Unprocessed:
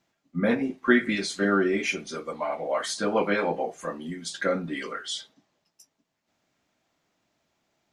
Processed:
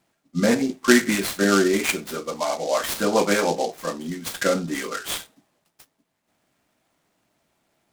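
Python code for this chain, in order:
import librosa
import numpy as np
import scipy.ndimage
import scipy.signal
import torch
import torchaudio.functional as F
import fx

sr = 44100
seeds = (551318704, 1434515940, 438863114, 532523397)

y = fx.noise_mod_delay(x, sr, seeds[0], noise_hz=4800.0, depth_ms=0.049)
y = F.gain(torch.from_numpy(y), 4.5).numpy()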